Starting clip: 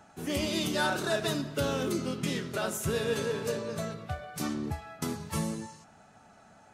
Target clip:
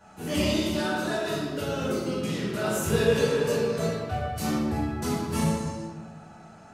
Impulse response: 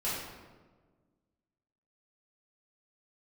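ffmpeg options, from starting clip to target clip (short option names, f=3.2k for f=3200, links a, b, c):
-filter_complex "[0:a]asettb=1/sr,asplit=3[a][b][c];[a]atrim=end=0.514[d];[b]atrim=start=0.51:end=2.66,asetpts=PTS-STARTPTS,afade=t=in:d=0.004:c=qsin,afade=t=out:st=2.146:d=0.004:c=qsin,acompressor=threshold=-32dB:ratio=6[e];[c]atrim=start=2.656[f];[d][e]acrossfade=d=0.004:c1=hsin:c2=qsin[g];[g][f]acrossfade=d=0.004:c1=qsin:c2=hsin[h];[1:a]atrim=start_sample=2205[i];[h][i]afir=irnorm=-1:irlink=0"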